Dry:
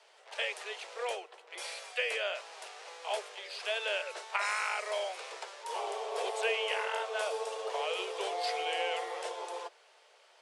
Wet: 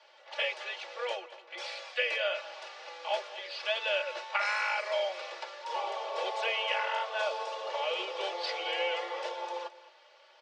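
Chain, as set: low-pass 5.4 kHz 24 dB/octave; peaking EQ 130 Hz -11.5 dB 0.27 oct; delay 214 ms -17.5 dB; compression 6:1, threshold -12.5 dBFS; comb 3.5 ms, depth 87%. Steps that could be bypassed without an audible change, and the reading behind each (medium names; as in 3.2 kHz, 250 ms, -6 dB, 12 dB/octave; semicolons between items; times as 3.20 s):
peaking EQ 130 Hz: input has nothing below 340 Hz; compression, threshold -12.5 dBFS: peak at its input -16.0 dBFS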